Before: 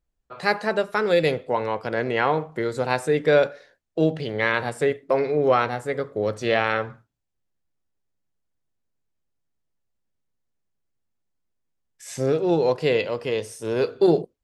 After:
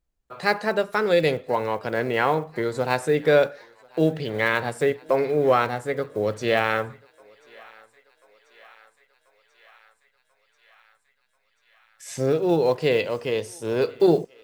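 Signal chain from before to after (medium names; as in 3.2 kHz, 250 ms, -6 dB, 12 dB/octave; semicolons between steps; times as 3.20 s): block-companded coder 7-bit; on a send: thinning echo 1038 ms, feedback 76%, high-pass 690 Hz, level -24 dB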